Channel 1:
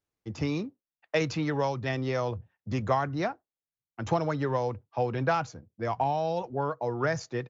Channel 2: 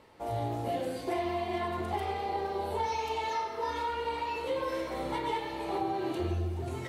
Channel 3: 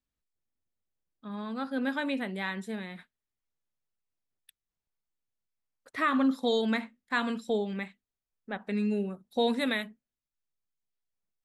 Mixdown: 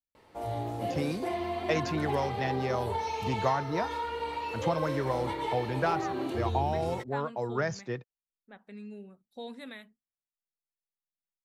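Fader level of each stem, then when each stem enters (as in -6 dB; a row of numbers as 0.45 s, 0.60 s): -2.5 dB, -1.0 dB, -15.0 dB; 0.55 s, 0.15 s, 0.00 s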